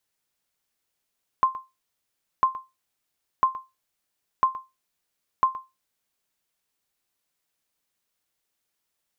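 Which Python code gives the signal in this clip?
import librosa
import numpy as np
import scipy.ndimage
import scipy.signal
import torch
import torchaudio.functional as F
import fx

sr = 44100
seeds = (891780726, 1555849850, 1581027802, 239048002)

y = fx.sonar_ping(sr, hz=1050.0, decay_s=0.22, every_s=1.0, pings=5, echo_s=0.12, echo_db=-17.0, level_db=-11.0)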